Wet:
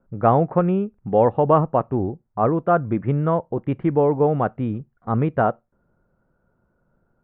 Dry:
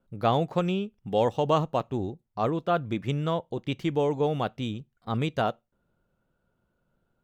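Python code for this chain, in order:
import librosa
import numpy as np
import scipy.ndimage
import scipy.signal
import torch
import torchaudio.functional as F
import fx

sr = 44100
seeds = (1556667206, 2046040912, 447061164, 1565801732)

y = scipy.signal.sosfilt(scipy.signal.cheby2(4, 70, 7000.0, 'lowpass', fs=sr, output='sos'), x)
y = y * librosa.db_to_amplitude(7.5)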